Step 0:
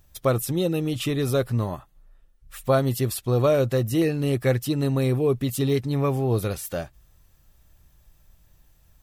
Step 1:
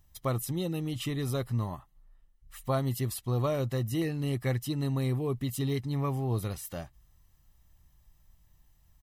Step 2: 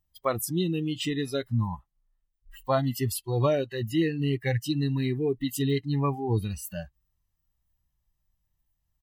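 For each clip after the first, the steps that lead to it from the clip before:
comb 1 ms, depth 41%; trim -8 dB
spectral noise reduction 21 dB; trim +6.5 dB

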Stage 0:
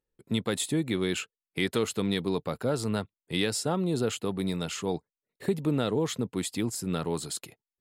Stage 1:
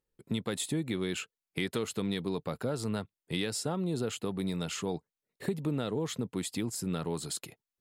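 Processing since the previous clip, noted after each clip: compression 2:1, threshold -33 dBFS, peak gain reduction 7 dB; peaking EQ 160 Hz +2 dB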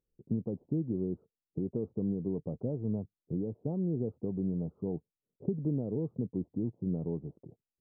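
Gaussian low-pass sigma 16 samples; trim +2 dB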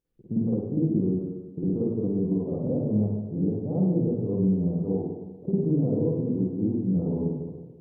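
spring tank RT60 1.2 s, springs 48/52/58 ms, chirp 25 ms, DRR -8 dB

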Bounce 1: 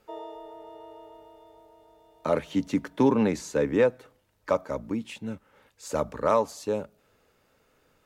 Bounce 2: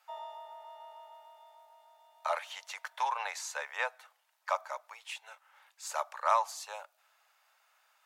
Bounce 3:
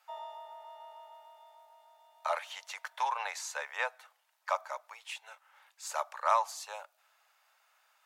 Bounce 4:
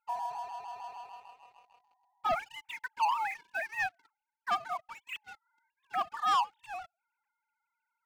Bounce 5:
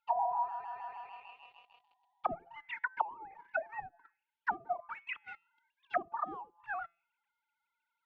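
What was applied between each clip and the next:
steep high-pass 700 Hz 48 dB/octave
no audible change
formants replaced by sine waves; waveshaping leveller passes 3; trim -5 dB
feedback comb 170 Hz, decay 0.47 s, harmonics all, mix 30%; touch-sensitive low-pass 380–3500 Hz down, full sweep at -32 dBFS

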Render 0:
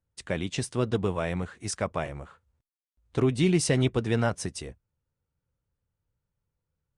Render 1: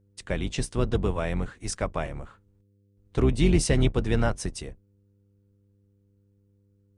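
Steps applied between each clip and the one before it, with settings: octave divider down 2 oct, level +1 dB; mains buzz 100 Hz, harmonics 5, -64 dBFS -7 dB/octave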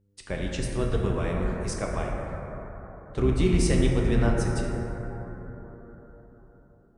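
plate-style reverb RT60 4.5 s, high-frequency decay 0.25×, DRR -1.5 dB; trim -4 dB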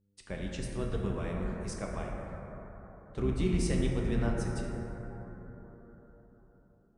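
peaking EQ 200 Hz +5.5 dB 0.29 oct; trim -8 dB

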